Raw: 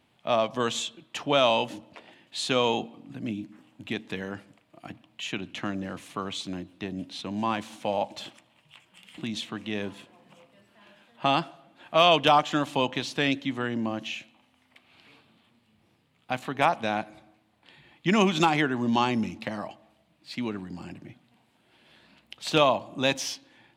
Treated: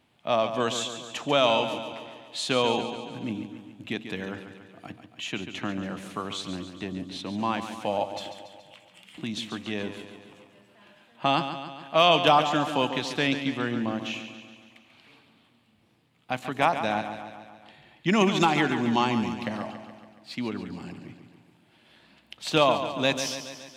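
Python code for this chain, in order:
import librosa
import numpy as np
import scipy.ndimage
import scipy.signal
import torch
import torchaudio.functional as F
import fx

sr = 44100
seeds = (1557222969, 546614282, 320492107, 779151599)

y = fx.echo_feedback(x, sr, ms=141, feedback_pct=59, wet_db=-10)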